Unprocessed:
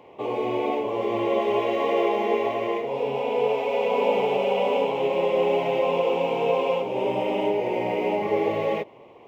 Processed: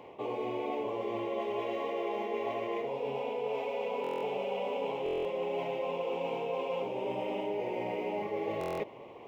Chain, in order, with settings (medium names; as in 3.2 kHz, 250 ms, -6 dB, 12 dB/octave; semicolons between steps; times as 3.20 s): reverse; compression 6:1, threshold -32 dBFS, peak gain reduction 14.5 dB; reverse; buffer glitch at 4.02/5.04/8.59 s, samples 1024, times 8